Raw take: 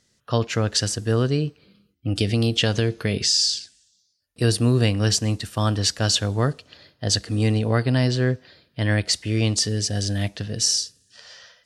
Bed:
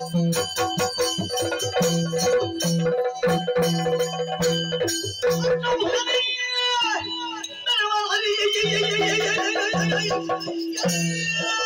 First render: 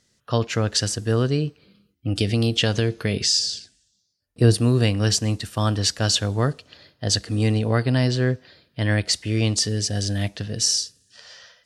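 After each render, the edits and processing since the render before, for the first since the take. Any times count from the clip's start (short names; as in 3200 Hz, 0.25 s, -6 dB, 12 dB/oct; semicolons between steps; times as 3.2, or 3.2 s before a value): 3.39–4.54 tilt shelf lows +5 dB, about 1100 Hz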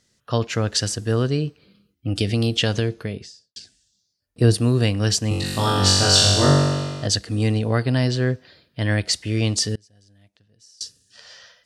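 2.7–3.56 studio fade out; 5.29–7.07 flutter echo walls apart 3.6 m, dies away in 1.5 s; 9.75–10.81 flipped gate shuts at -23 dBFS, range -31 dB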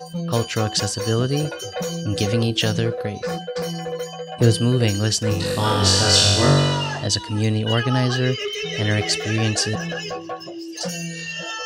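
add bed -5.5 dB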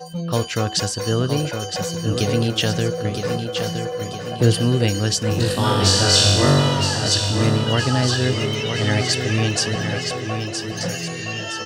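feedback echo 0.967 s, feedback 50%, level -7 dB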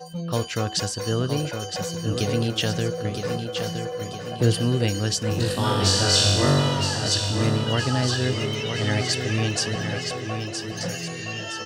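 gain -4 dB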